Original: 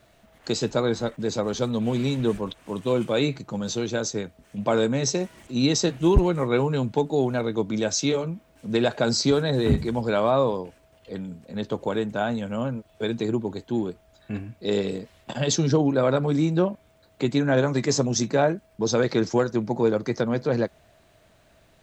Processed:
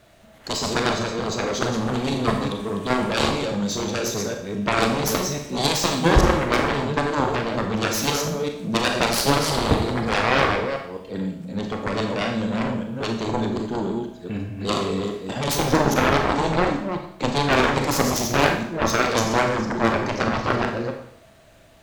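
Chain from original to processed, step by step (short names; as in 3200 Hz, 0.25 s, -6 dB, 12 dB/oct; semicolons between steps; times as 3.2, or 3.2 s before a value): reverse delay 0.207 s, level -5 dB; added harmonics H 4 -27 dB, 7 -9 dB, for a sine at -6.5 dBFS; wavefolder -7.5 dBFS; Schroeder reverb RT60 0.66 s, combs from 28 ms, DRR 3.5 dB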